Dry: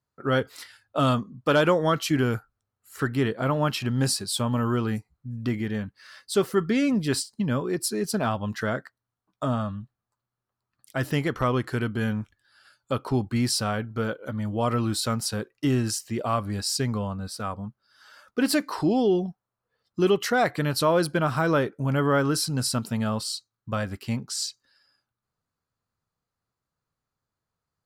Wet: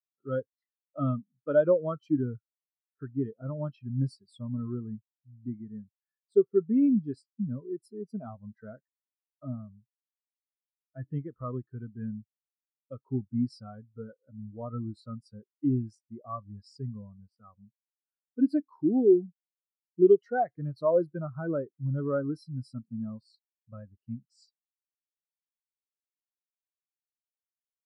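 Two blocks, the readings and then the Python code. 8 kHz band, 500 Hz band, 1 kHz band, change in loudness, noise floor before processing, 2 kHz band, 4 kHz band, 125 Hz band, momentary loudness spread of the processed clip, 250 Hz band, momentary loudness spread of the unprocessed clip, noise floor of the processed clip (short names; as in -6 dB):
under -35 dB, -2.5 dB, -11.5 dB, -4.0 dB, under -85 dBFS, -17.5 dB, under -25 dB, -8.0 dB, 22 LU, -4.0 dB, 10 LU, under -85 dBFS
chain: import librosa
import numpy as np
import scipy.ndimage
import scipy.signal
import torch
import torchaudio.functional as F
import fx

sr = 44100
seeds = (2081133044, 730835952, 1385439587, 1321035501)

y = fx.spectral_expand(x, sr, expansion=2.5)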